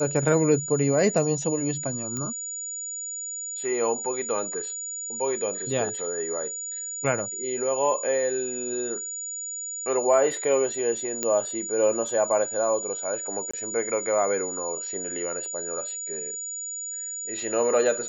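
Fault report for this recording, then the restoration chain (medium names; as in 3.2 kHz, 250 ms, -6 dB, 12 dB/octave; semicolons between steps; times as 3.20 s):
whine 6.9 kHz -31 dBFS
2.17 s: pop -18 dBFS
11.23 s: pop -10 dBFS
13.51–13.54 s: dropout 25 ms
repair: de-click; band-stop 6.9 kHz, Q 30; interpolate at 13.51 s, 25 ms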